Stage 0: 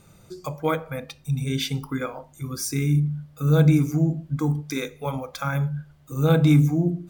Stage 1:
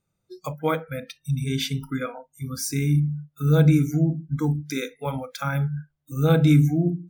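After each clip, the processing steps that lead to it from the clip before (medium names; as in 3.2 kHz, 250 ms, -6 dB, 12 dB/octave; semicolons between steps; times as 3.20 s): spectral noise reduction 25 dB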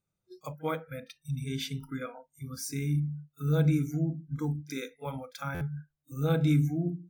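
pre-echo 33 ms -21 dB; buffer glitch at 5.54 s, samples 512, times 5; trim -8.5 dB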